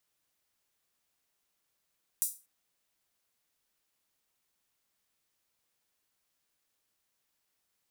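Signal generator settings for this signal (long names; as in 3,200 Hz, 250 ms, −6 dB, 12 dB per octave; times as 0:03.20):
open synth hi-hat length 0.24 s, high-pass 8,400 Hz, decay 0.30 s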